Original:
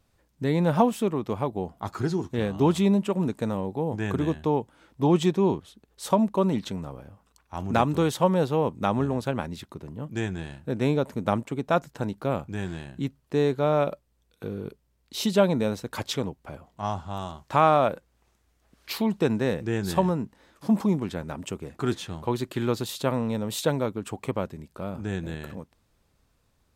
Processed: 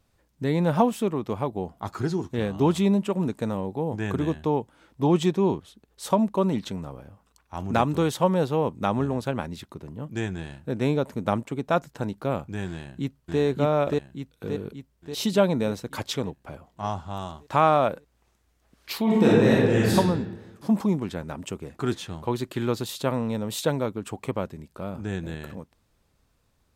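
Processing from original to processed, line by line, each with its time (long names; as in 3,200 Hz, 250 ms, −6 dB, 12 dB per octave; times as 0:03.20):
0:12.70–0:13.40: delay throw 580 ms, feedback 55%, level −1 dB
0:19.03–0:19.94: thrown reverb, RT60 1.2 s, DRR −7 dB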